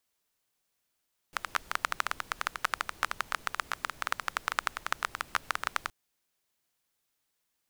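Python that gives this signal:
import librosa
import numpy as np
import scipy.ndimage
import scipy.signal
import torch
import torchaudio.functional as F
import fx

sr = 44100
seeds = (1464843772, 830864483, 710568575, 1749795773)

y = fx.rain(sr, seeds[0], length_s=4.57, drops_per_s=13.0, hz=1300.0, bed_db=-18)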